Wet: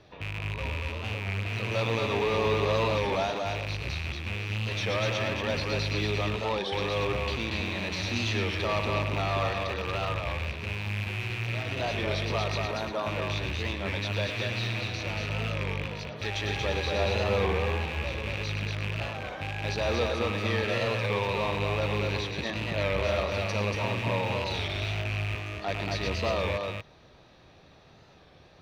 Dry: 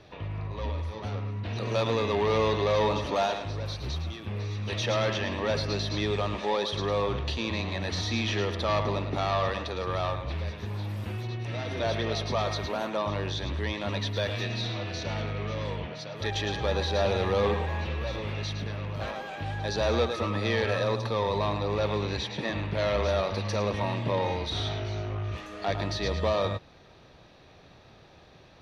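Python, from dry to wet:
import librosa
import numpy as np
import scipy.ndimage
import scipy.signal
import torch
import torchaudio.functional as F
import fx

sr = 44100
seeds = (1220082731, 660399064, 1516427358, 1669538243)

p1 = fx.rattle_buzz(x, sr, strikes_db=-34.0, level_db=-21.0)
p2 = p1 + fx.echo_single(p1, sr, ms=234, db=-3.5, dry=0)
p3 = fx.record_warp(p2, sr, rpm=33.33, depth_cents=100.0)
y = p3 * librosa.db_to_amplitude(-3.0)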